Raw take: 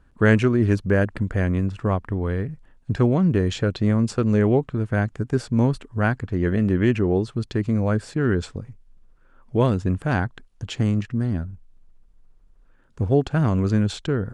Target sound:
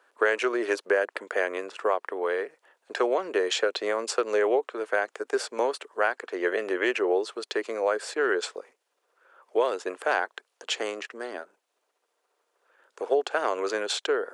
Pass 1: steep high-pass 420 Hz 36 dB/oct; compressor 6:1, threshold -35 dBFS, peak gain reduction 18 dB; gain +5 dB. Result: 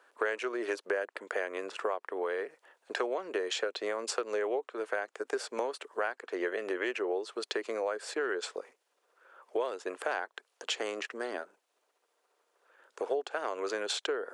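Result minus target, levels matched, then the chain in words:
compressor: peak gain reduction +8.5 dB
steep high-pass 420 Hz 36 dB/oct; compressor 6:1, threshold -24.5 dBFS, peak gain reduction 9.5 dB; gain +5 dB

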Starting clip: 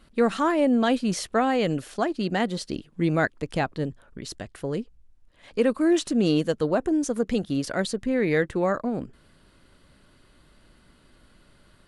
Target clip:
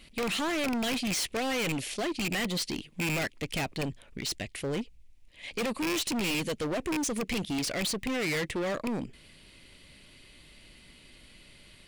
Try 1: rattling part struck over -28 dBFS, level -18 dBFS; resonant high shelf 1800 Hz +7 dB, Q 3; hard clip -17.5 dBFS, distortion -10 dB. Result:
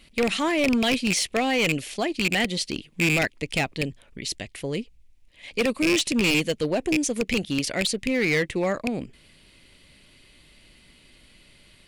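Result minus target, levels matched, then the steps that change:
hard clip: distortion -7 dB
change: hard clip -28.5 dBFS, distortion -3 dB

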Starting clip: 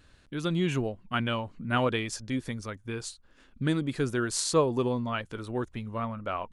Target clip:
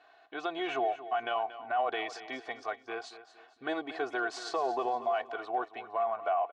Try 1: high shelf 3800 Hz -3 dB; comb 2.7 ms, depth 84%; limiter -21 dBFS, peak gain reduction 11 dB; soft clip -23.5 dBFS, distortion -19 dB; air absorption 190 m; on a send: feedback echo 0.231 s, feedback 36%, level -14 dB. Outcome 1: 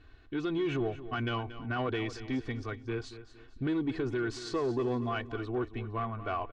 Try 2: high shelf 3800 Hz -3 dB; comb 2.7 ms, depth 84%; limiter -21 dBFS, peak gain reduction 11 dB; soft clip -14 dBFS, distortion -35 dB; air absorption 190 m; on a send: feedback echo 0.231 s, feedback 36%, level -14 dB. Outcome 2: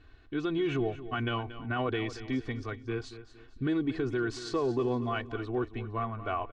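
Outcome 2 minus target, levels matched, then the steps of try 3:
1000 Hz band -7.0 dB
resonant high-pass 710 Hz, resonance Q 6.9; high shelf 3800 Hz -3 dB; comb 2.7 ms, depth 84%; limiter -21 dBFS, peak gain reduction 15.5 dB; soft clip -14 dBFS, distortion -35 dB; air absorption 190 m; on a send: feedback echo 0.231 s, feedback 36%, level -14 dB

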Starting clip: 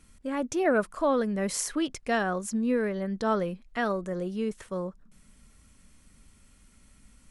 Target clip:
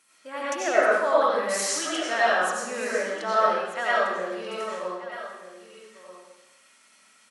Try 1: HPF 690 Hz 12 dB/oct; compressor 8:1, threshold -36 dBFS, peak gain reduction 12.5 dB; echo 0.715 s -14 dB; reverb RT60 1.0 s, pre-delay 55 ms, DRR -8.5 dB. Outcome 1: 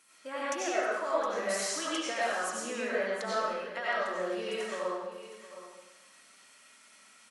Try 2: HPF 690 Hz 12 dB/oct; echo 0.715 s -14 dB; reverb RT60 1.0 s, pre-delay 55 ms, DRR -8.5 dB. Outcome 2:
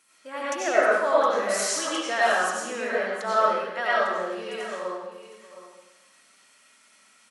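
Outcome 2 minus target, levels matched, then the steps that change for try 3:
echo 0.521 s early
change: echo 1.236 s -14 dB

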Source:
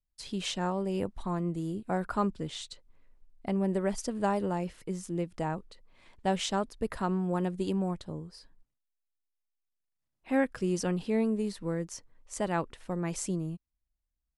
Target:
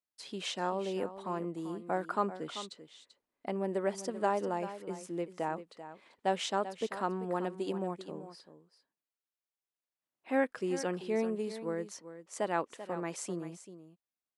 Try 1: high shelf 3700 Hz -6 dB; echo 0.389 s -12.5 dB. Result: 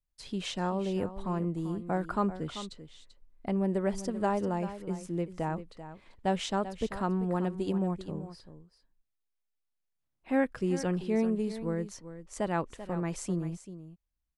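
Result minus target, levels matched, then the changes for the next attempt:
250 Hz band +3.5 dB
add first: HPF 320 Hz 12 dB/oct

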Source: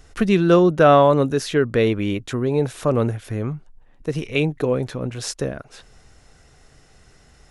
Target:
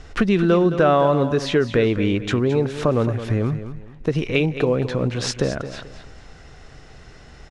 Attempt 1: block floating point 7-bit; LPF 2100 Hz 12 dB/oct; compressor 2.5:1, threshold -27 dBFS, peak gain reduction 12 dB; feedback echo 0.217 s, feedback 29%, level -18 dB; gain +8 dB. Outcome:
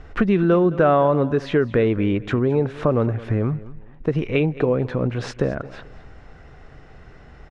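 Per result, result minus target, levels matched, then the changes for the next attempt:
4000 Hz band -8.5 dB; echo-to-direct -6.5 dB
change: LPF 4800 Hz 12 dB/oct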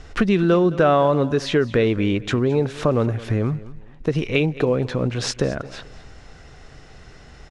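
echo-to-direct -6.5 dB
change: feedback echo 0.217 s, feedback 29%, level -11.5 dB

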